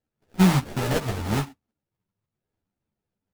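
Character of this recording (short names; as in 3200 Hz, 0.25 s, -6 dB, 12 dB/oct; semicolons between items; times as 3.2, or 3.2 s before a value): a buzz of ramps at a fixed pitch in blocks of 16 samples; phasing stages 8, 0.76 Hz, lowest notch 360–1000 Hz; aliases and images of a low sample rate 1100 Hz, jitter 20%; a shimmering, thickened sound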